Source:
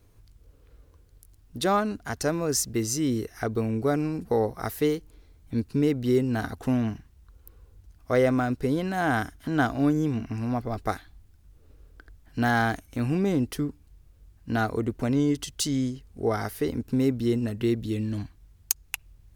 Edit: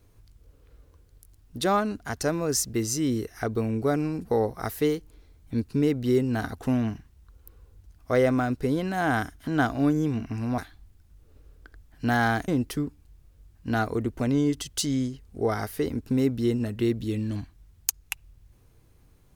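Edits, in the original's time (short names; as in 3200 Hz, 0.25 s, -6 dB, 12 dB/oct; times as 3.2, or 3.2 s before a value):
10.58–10.92 cut
12.82–13.3 cut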